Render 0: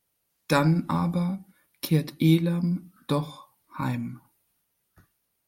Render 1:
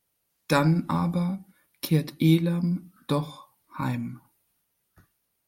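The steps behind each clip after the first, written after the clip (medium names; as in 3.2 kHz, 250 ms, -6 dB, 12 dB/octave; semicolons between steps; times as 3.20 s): no audible change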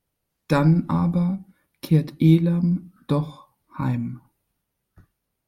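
tilt EQ -2 dB/octave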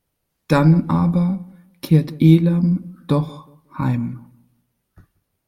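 filtered feedback delay 181 ms, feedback 28%, low-pass 1.5 kHz, level -20 dB; trim +4 dB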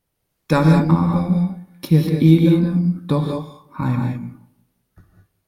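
gated-style reverb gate 230 ms rising, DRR 1.5 dB; trim -1 dB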